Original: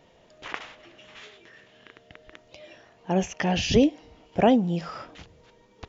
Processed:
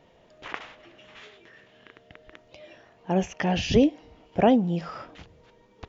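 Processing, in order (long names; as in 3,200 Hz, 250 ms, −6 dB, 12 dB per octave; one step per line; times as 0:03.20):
high-shelf EQ 4,800 Hz −8 dB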